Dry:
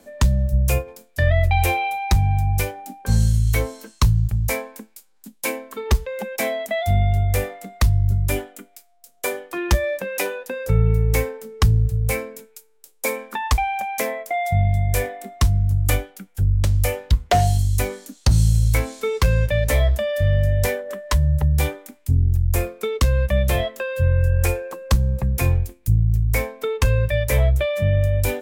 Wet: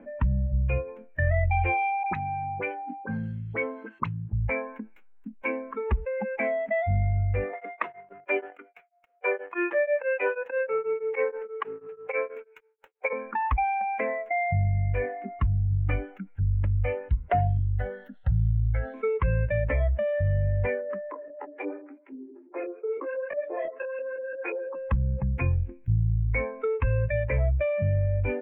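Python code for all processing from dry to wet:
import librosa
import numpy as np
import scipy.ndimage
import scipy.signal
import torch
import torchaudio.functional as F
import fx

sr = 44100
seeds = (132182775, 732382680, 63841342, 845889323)

y = fx.chain(x, sr, fx.highpass(hz=230.0, slope=12),
    fx.dispersion(late='highs', ms=41.0, hz=1500.0), at=(2.03, 4.33))
y = fx.chain(y, sr, fx.highpass(hz=390.0, slope=24),
    fx.leveller(passes=2),
    fx.tremolo_abs(hz=6.2), at=(7.53, 13.13))
y = fx.chain(y, sr, fx.high_shelf(hz=5900.0, db=9.5),
    fx.fixed_phaser(hz=1600.0, stages=8), at=(17.59, 18.94))
y = fx.chain(y, sr, fx.steep_highpass(hz=270.0, slope=96),
    fx.filter_lfo_lowpass(shape='saw_up', hz=5.9, low_hz=440.0, high_hz=4600.0, q=0.85),
    fx.detune_double(cents=31), at=(21.11, 24.75))
y = fx.bin_expand(y, sr, power=1.5)
y = scipy.signal.sosfilt(scipy.signal.ellip(4, 1.0, 50, 2400.0, 'lowpass', fs=sr, output='sos'), y)
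y = fx.env_flatten(y, sr, amount_pct=50)
y = y * librosa.db_to_amplitude(-7.0)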